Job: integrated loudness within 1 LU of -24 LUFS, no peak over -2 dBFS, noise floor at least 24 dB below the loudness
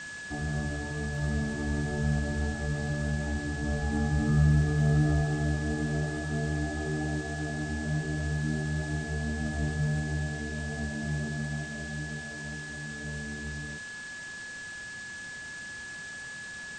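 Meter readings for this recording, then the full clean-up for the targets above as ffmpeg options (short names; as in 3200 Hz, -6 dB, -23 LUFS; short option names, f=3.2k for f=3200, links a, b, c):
steady tone 1700 Hz; tone level -39 dBFS; noise floor -41 dBFS; noise floor target -56 dBFS; loudness -31.5 LUFS; peak -14.0 dBFS; loudness target -24.0 LUFS
-> -af "bandreject=f=1.7k:w=30"
-af "afftdn=nr=15:nf=-41"
-af "volume=7.5dB"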